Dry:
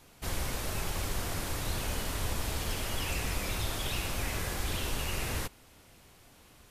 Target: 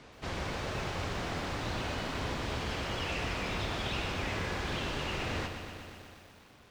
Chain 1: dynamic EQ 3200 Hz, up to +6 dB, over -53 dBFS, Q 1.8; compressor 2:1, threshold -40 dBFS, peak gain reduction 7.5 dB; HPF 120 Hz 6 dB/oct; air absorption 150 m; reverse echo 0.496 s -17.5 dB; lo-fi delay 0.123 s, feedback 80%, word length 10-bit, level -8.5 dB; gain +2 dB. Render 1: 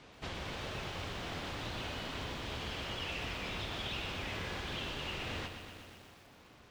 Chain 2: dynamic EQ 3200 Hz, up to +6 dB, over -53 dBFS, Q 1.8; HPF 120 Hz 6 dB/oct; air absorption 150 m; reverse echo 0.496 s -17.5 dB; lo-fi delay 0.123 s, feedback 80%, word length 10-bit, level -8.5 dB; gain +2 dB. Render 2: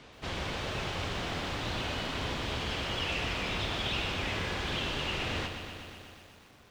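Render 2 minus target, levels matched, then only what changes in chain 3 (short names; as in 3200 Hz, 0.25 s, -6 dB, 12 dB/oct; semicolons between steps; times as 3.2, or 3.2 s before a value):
4000 Hz band +3.0 dB
remove: dynamic EQ 3200 Hz, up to +6 dB, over -53 dBFS, Q 1.8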